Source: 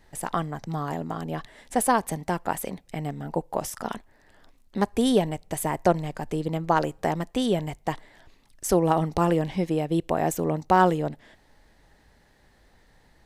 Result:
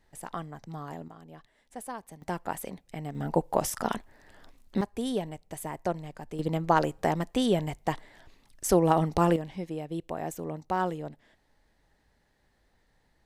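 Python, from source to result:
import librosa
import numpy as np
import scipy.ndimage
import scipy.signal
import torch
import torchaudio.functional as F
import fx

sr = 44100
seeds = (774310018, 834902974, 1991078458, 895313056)

y = fx.gain(x, sr, db=fx.steps((0.0, -9.5), (1.08, -17.5), (2.22, -6.0), (3.15, 2.0), (4.81, -9.5), (6.39, -1.0), (9.36, -10.0)))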